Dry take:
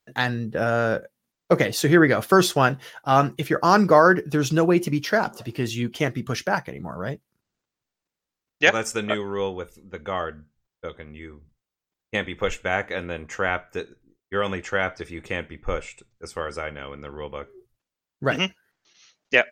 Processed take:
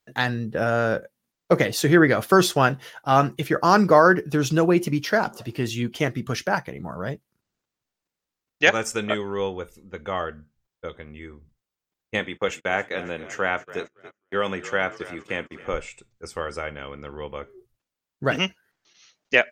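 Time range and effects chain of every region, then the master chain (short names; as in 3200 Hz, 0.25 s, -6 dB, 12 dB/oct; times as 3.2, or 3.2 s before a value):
12.19–15.73 frequency-shifting echo 0.274 s, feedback 61%, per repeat -36 Hz, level -16.5 dB + gate -42 dBFS, range -29 dB + HPF 140 Hz
whole clip: dry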